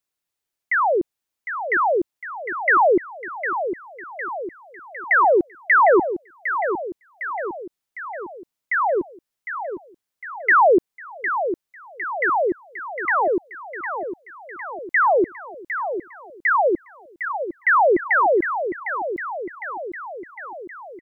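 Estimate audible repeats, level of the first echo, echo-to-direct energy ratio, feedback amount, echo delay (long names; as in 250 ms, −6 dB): 6, −9.0 dB, −7.0 dB, 58%, 756 ms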